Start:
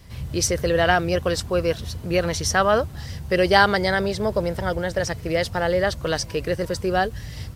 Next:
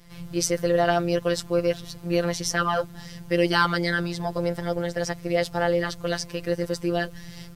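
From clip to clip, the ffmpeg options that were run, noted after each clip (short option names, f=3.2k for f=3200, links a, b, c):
-af "afftfilt=real='hypot(re,im)*cos(PI*b)':imag='0':win_size=1024:overlap=0.75"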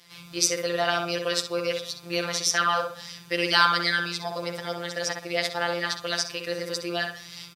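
-filter_complex "[0:a]highpass=f=750:p=1,equalizer=f=3.8k:t=o:w=1.5:g=7,asplit=2[a][b];[b]adelay=63,lowpass=f=2.2k:p=1,volume=-3.5dB,asplit=2[c][d];[d]adelay=63,lowpass=f=2.2k:p=1,volume=0.38,asplit=2[e][f];[f]adelay=63,lowpass=f=2.2k:p=1,volume=0.38,asplit=2[g][h];[h]adelay=63,lowpass=f=2.2k:p=1,volume=0.38,asplit=2[i][j];[j]adelay=63,lowpass=f=2.2k:p=1,volume=0.38[k];[c][e][g][i][k]amix=inputs=5:normalize=0[l];[a][l]amix=inputs=2:normalize=0"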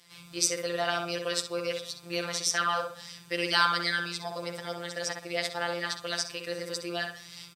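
-af "equalizer=f=8.2k:t=o:w=0.22:g=7.5,volume=-4.5dB"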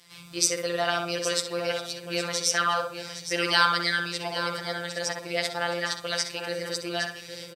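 -af "aecho=1:1:814:0.299,volume=3dB"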